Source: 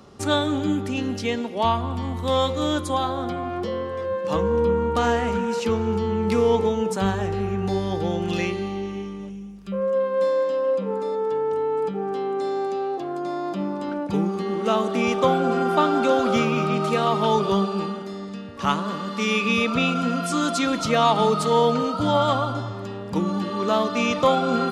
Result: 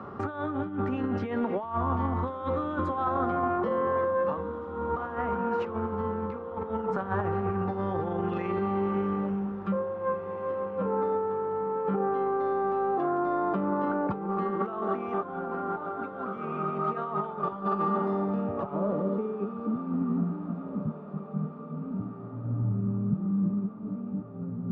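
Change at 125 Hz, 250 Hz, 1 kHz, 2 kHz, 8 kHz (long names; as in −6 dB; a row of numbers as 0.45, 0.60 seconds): −4.5 dB, −5.5 dB, −6.5 dB, −11.5 dB, below −35 dB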